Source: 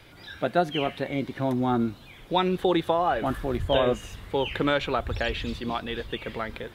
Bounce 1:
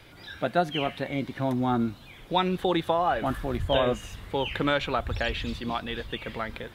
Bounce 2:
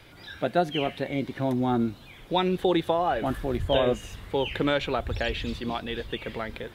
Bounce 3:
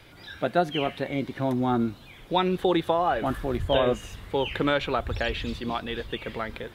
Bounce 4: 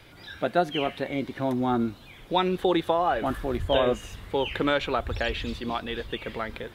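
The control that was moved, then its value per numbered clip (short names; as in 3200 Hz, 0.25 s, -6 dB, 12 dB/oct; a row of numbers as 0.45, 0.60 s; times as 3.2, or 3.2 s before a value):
dynamic EQ, frequency: 400, 1200, 6900, 140 Hz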